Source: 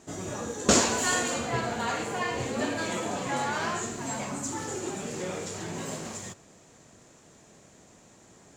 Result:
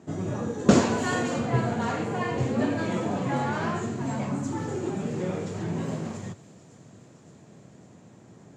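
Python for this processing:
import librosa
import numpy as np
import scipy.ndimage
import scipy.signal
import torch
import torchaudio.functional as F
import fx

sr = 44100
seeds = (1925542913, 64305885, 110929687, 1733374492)

y = scipy.signal.sosfilt(scipy.signal.butter(4, 110.0, 'highpass', fs=sr, output='sos'), x)
y = fx.riaa(y, sr, side='playback')
y = fx.echo_wet_highpass(y, sr, ms=564, feedback_pct=73, hz=4600.0, wet_db=-14.0)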